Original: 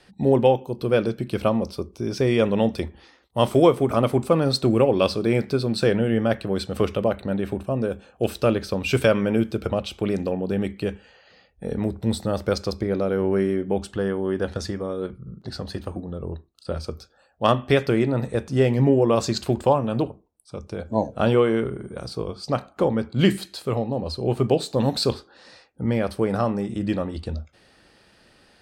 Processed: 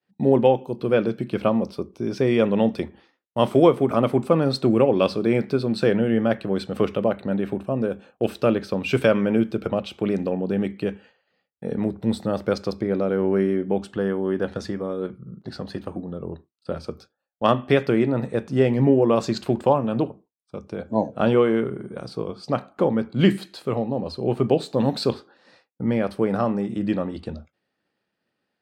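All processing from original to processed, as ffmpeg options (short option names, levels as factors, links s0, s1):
-filter_complex "[0:a]asettb=1/sr,asplit=3[s0][s1][s2];[s0]atrim=end=0.594[s3];[s1]atrim=start=0.59:end=1.49,asetpts=PTS-STARTPTS,afade=t=in:d=0.004:c=qsin,afade=t=out:st=0.896:d=0.004:c=qsin,equalizer=f=9000:w=0.37:g=4.5,acrossover=split=3700[s4][s5];[s5]acompressor=threshold=0.00355:ratio=4:attack=1:release=60[s6];[s4][s6]amix=inputs=2:normalize=0[s7];[s2]atrim=start=1.486[s8];[s3][s7]acrossfade=d=0.004:c1=hsin:c2=qsin[s9];[s9][s8]acrossfade=d=0.004:c1=qsin:c2=hsin,highpass=190,agate=range=0.0224:threshold=0.00708:ratio=3:detection=peak,bass=f=250:g=6,treble=f=4000:g=-8"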